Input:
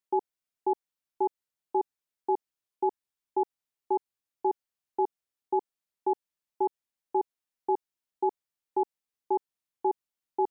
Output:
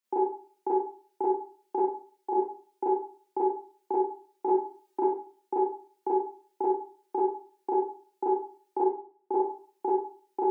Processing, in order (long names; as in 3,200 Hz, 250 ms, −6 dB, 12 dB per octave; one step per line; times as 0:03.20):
0:01.80–0:02.33: low-shelf EQ 410 Hz −12 dB
0:04.46–0:05.03: comb filter 3.2 ms, depth 92%
0:08.79–0:09.36: low-pass filter 1,000 Hz 12 dB per octave
downward compressor, threshold −28 dBFS, peak gain reduction 8.5 dB
high-pass filter 200 Hz 24 dB per octave
four-comb reverb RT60 0.44 s, combs from 31 ms, DRR −8.5 dB